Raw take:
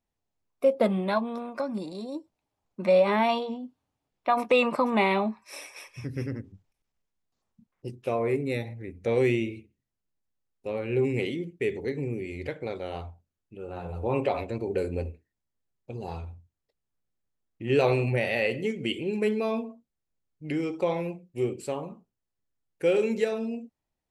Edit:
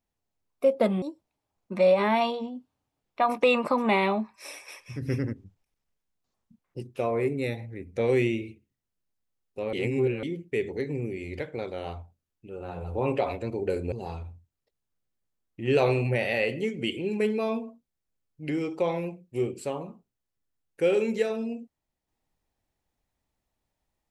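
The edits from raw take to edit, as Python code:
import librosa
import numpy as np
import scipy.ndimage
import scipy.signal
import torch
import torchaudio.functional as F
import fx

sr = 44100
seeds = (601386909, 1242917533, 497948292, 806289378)

y = fx.edit(x, sr, fx.cut(start_s=1.02, length_s=1.08),
    fx.clip_gain(start_s=6.1, length_s=0.31, db=4.0),
    fx.reverse_span(start_s=10.81, length_s=0.5),
    fx.cut(start_s=15.0, length_s=0.94), tone=tone)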